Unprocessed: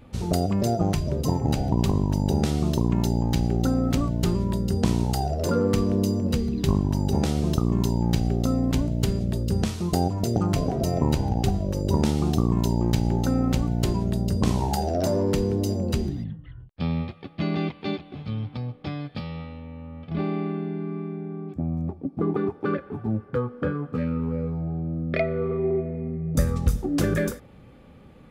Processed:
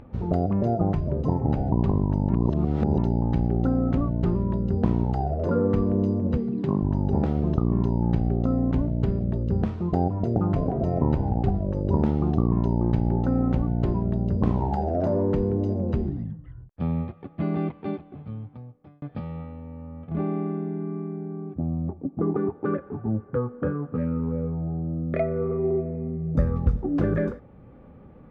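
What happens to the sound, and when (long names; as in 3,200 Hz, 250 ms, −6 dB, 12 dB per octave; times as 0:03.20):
0:02.29–0:02.98: reverse
0:06.37–0:06.82: high-pass filter 130 Hz 24 dB per octave
0:17.75–0:19.02: fade out
whole clip: low-pass filter 1,300 Hz 12 dB per octave; upward compression, threshold −43 dBFS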